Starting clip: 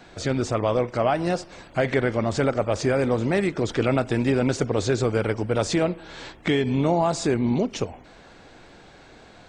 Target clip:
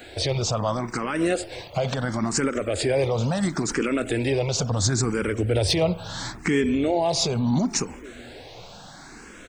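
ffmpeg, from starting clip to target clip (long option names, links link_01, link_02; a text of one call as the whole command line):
ffmpeg -i in.wav -filter_complex "[0:a]asettb=1/sr,asplit=3[link_01][link_02][link_03];[link_01]atrim=end=4.704[link_04];[link_02]atrim=start=4.7:end=6.91,asetpts=PTS-STARTPTS,afade=type=in:duration=0.004:curve=qsin,afade=type=out:start_time=2.206:duration=0.004:curve=qsin,equalizer=frequency=79:width_type=o:width=1.4:gain=11[link_05];[link_03]atrim=start=6.906[link_06];[link_04][link_05]acrossfade=duration=0.004:curve1=hsin:curve2=qsin[link_07];[link_07][link_06]acrossfade=duration=0.004:curve1=qsin:curve2=hsin,asplit=2[link_08][link_09];[link_09]adelay=758,volume=-27dB,highshelf=frequency=4000:gain=-17.1[link_10];[link_08][link_10]amix=inputs=2:normalize=0,alimiter=limit=-18.5dB:level=0:latency=1:release=74,aemphasis=mode=production:type=50kf,volume=15.5dB,asoftclip=hard,volume=-15.5dB,asplit=2[link_11][link_12];[link_12]afreqshift=0.73[link_13];[link_11][link_13]amix=inputs=2:normalize=1,volume=7dB" out.wav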